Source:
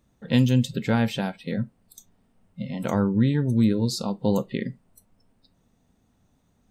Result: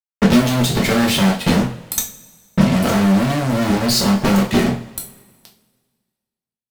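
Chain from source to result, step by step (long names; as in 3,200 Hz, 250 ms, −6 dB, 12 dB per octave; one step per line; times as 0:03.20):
fuzz pedal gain 45 dB, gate −46 dBFS
transient designer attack +10 dB, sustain −3 dB
coupled-rooms reverb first 0.32 s, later 1.7 s, from −21 dB, DRR −0.5 dB
level −5.5 dB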